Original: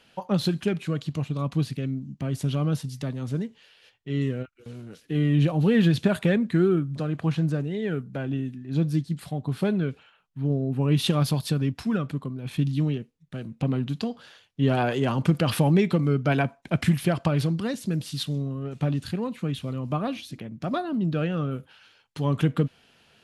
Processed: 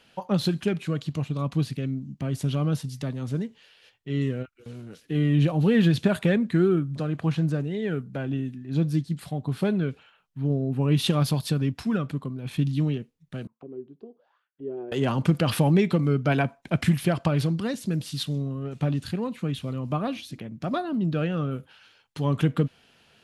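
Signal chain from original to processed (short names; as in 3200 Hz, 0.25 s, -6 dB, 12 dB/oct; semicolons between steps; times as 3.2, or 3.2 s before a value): 13.47–14.92 auto-wah 380–1800 Hz, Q 8.6, down, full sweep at -27.5 dBFS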